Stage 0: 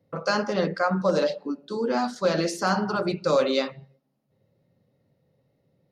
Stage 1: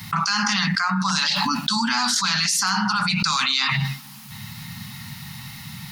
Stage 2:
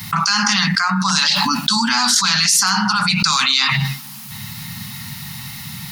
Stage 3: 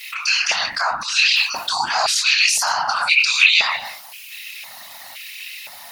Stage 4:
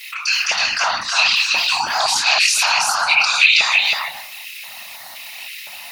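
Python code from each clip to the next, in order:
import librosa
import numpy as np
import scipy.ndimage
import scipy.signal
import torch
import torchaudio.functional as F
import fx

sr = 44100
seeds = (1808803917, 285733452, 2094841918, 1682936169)

y1 = scipy.signal.sosfilt(scipy.signal.ellip(3, 1.0, 60, [220.0, 890.0], 'bandstop', fs=sr, output='sos'), x)
y1 = fx.tilt_shelf(y1, sr, db=-8.5, hz=1200.0)
y1 = fx.env_flatten(y1, sr, amount_pct=100)
y2 = fx.high_shelf(y1, sr, hz=5700.0, db=6.0)
y2 = y2 * 10.0 ** (4.0 / 20.0)
y3 = fx.doubler(y2, sr, ms=26.0, db=-5)
y3 = fx.filter_lfo_highpass(y3, sr, shape='square', hz=0.97, low_hz=690.0, high_hz=2500.0, q=7.7)
y3 = fx.whisperise(y3, sr, seeds[0])
y3 = y3 * 10.0 ** (-7.0 / 20.0)
y4 = y3 + 10.0 ** (-3.0 / 20.0) * np.pad(y3, (int(322 * sr / 1000.0), 0))[:len(y3)]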